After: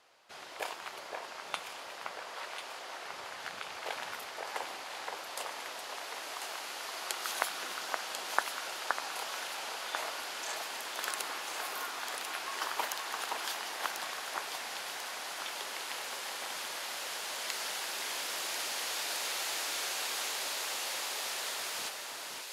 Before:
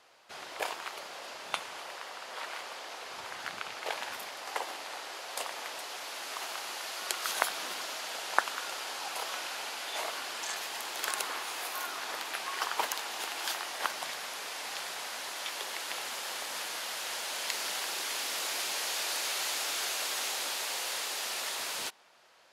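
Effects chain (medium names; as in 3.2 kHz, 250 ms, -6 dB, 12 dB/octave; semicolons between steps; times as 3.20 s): echo whose repeats swap between lows and highs 521 ms, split 2.2 kHz, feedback 72%, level -3 dB; trim -3.5 dB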